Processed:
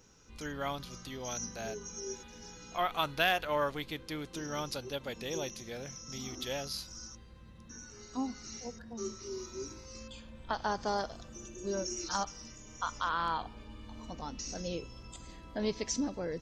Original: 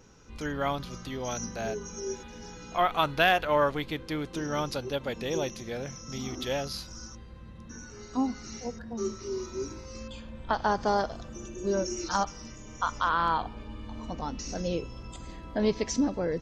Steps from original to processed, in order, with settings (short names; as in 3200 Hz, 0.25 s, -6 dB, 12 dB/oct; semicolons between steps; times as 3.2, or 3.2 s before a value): high shelf 3200 Hz +8.5 dB; gain -7.5 dB